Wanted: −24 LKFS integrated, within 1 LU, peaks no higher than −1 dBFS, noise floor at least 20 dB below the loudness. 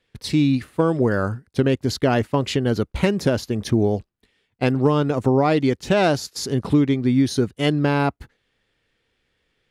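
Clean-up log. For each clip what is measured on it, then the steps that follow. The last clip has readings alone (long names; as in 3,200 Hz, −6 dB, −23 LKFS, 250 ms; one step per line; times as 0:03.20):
integrated loudness −21.0 LKFS; sample peak −8.0 dBFS; target loudness −24.0 LKFS
→ level −3 dB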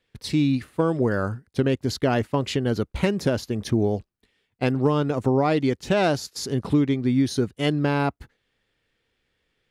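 integrated loudness −24.0 LKFS; sample peak −11.0 dBFS; background noise floor −75 dBFS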